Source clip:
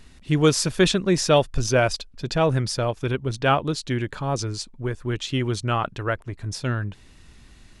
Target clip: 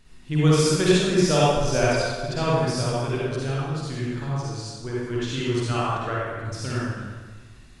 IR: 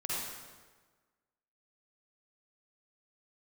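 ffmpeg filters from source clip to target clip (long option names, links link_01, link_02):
-filter_complex "[0:a]asettb=1/sr,asplit=3[link_01][link_02][link_03];[link_01]atrim=end=3.424[link_04];[link_02]atrim=start=3.42:end=4.67,asetpts=PTS-STARTPTS,afade=type=in:duration=0.004:curve=qsin,afade=type=out:start_time=1.246:duration=0.004:curve=qsin,acrossover=split=200[link_05][link_06];[link_06]acompressor=threshold=-32dB:ratio=3[link_07];[link_05][link_07]amix=inputs=2:normalize=0[link_08];[link_03]atrim=start=4.666[link_09];[link_04][link_08]acrossfade=duration=0.004:curve1=hsin:curve2=qsin[link_10];[link_10][link_09]acrossfade=duration=0.004:curve1=qsin:curve2=hsin[link_11];[1:a]atrim=start_sample=2205[link_12];[link_11][link_12]afir=irnorm=-1:irlink=0,volume=-4.5dB"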